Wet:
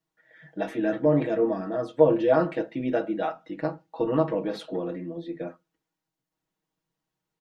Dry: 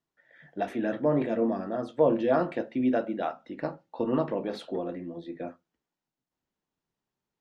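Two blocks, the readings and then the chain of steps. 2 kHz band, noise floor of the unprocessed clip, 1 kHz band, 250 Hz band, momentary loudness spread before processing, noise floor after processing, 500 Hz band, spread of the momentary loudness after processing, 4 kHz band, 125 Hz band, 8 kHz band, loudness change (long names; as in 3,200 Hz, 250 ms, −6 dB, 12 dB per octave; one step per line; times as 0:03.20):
+2.5 dB, below −85 dBFS, +1.0 dB, +1.5 dB, 13 LU, below −85 dBFS, +4.0 dB, 14 LU, +2.5 dB, +5.0 dB, can't be measured, +3.0 dB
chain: comb filter 6.3 ms, depth 90%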